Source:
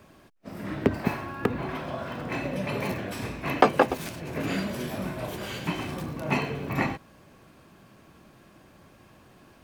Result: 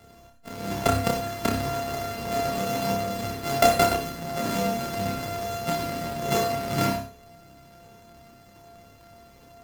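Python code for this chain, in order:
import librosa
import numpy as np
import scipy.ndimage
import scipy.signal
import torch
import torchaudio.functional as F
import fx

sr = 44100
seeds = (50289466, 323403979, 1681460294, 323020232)

p1 = np.r_[np.sort(x[:len(x) // 64 * 64].reshape(-1, 64), axis=1).ravel(), x[len(x) // 64 * 64:]]
p2 = fx.chorus_voices(p1, sr, voices=6, hz=0.31, base_ms=28, depth_ms=2.2, mix_pct=35)
p3 = 10.0 ** (-19.0 / 20.0) * (np.abs((p2 / 10.0 ** (-19.0 / 20.0) + 3.0) % 4.0 - 2.0) - 1.0)
p4 = p2 + (p3 * librosa.db_to_amplitude(-7.5))
p5 = fx.room_flutter(p4, sr, wall_m=5.2, rt60_s=0.32)
y = fx.rev_gated(p5, sr, seeds[0], gate_ms=110, shape='rising', drr_db=8.5)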